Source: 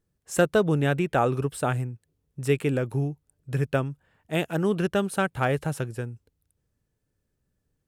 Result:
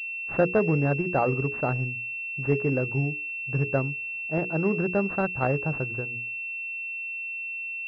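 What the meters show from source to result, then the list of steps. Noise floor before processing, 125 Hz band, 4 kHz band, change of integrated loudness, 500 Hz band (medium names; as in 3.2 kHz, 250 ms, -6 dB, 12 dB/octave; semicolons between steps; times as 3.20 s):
-78 dBFS, -0.5 dB, under -15 dB, -0.5 dB, -1.0 dB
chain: hum notches 60/120/180/240/300/360/420/480 Hz; class-D stage that switches slowly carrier 2.7 kHz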